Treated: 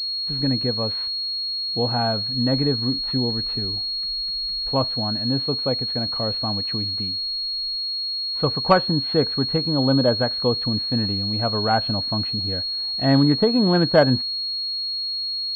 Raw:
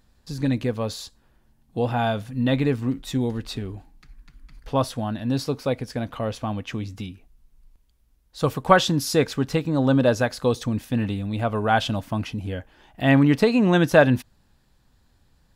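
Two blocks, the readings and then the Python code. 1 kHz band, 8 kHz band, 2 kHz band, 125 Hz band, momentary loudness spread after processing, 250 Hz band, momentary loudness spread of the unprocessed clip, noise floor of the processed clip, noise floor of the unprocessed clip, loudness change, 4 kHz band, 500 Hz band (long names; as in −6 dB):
−0.5 dB, below −20 dB, −5.0 dB, 0.0 dB, 6 LU, 0.0 dB, 15 LU, −27 dBFS, −63 dBFS, +2.0 dB, +15.0 dB, 0.0 dB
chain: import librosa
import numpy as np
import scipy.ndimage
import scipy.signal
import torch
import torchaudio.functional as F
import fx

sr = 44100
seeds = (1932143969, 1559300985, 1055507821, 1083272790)

y = fx.env_lowpass_down(x, sr, base_hz=1700.0, full_db=-16.0)
y = fx.pwm(y, sr, carrier_hz=4300.0)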